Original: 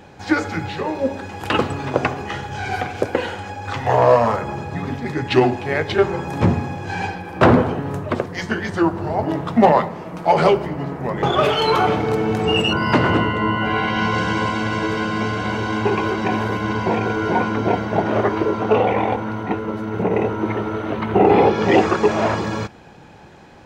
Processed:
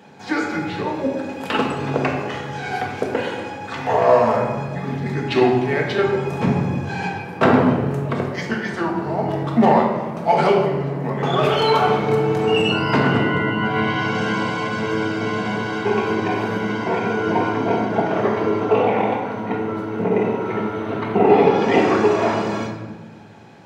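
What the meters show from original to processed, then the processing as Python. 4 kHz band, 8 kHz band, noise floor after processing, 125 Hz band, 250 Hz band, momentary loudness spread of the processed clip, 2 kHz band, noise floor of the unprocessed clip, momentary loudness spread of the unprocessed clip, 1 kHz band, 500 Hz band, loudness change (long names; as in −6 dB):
−2.0 dB, can't be measured, −32 dBFS, −1.0 dB, 0.0 dB, 10 LU, −0.5 dB, −35 dBFS, 11 LU, −1.0 dB, 0.0 dB, −0.5 dB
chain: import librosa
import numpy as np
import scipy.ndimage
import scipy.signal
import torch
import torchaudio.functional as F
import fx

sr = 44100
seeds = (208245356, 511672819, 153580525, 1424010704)

y = scipy.signal.sosfilt(scipy.signal.butter(4, 110.0, 'highpass', fs=sr, output='sos'), x)
y = fx.room_shoebox(y, sr, seeds[0], volume_m3=820.0, walls='mixed', distance_m=1.6)
y = y * librosa.db_to_amplitude(-4.0)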